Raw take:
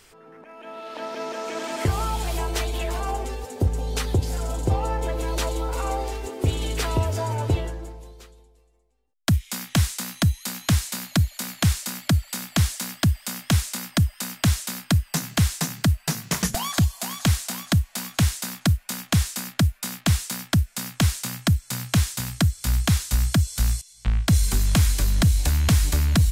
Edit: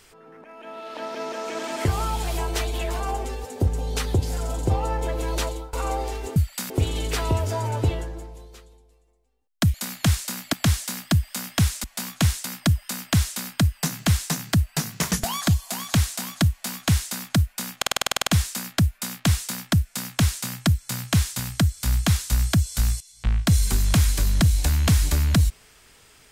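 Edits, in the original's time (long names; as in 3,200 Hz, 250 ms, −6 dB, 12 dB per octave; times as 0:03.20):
0:05.41–0:05.73: fade out, to −21.5 dB
0:09.40–0:11.32: remove
0:12.11–0:12.45: move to 0:06.36
0:17.82–0:18.43: duplicate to 0:13.76
0:19.08: stutter 0.05 s, 11 plays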